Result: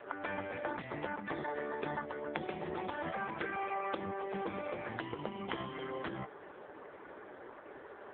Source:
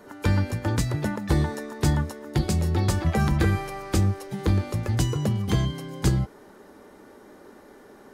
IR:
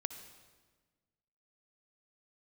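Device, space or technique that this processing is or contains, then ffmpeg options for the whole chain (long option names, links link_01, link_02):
voicemail: -af "highpass=450,lowpass=3200,acompressor=threshold=-37dB:ratio=6,volume=5dB" -ar 8000 -c:a libopencore_amrnb -b:a 4750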